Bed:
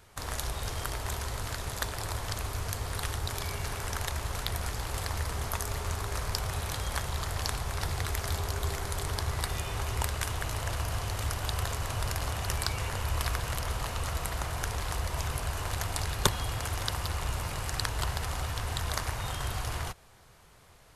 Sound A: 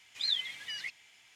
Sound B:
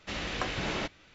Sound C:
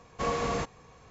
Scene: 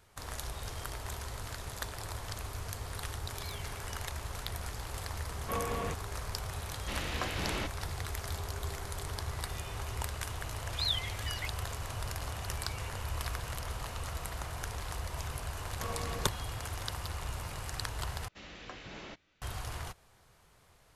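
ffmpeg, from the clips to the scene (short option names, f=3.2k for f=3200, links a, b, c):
-filter_complex "[1:a]asplit=2[a][b];[3:a]asplit=2[c][d];[2:a]asplit=2[e][f];[0:a]volume=-6dB[g];[a]asoftclip=type=tanh:threshold=-35dB[h];[c]aresample=8000,aresample=44100[i];[d]aeval=exprs='clip(val(0),-1,0.0316)':c=same[j];[g]asplit=2[k][l];[k]atrim=end=18.284[m];[f]atrim=end=1.14,asetpts=PTS-STARTPTS,volume=-13.5dB[n];[l]atrim=start=19.416[o];[h]atrim=end=1.35,asetpts=PTS-STARTPTS,volume=-13dB,afade=t=in:d=0.004:c=hsin,afade=t=out:st=1.346:d=0.004:c=hsin,adelay=3200[p];[i]atrim=end=1.1,asetpts=PTS-STARTPTS,volume=-6dB,afade=t=in:d=0.004:c=hsin,afade=t=out:st=1.096:d=0.004:c=hsin,adelay=233289S[q];[e]atrim=end=1.14,asetpts=PTS-STARTPTS,volume=-3.5dB,afade=t=in:d=0.004:c=hsin,afade=t=out:st=1.136:d=0.004:c=hsin,adelay=6800[r];[b]atrim=end=1.35,asetpts=PTS-STARTPTS,volume=-1.5dB,afade=t=in:d=0.004:c=hsin,afade=t=out:st=1.346:d=0.004:c=hsin,adelay=466578S[s];[j]atrim=end=1.1,asetpts=PTS-STARTPTS,volume=-10dB,afade=t=in:d=0.004:c=hsin,afade=t=out:st=1.096:d=0.004:c=hsin,adelay=15610[t];[m][n]acrossfade=d=0.004:c1=hsin:c2=hsin[u];[u][o]acrossfade=d=0.004:c1=hsin:c2=hsin[v];[v][p][q][r][s][t]amix=inputs=6:normalize=0"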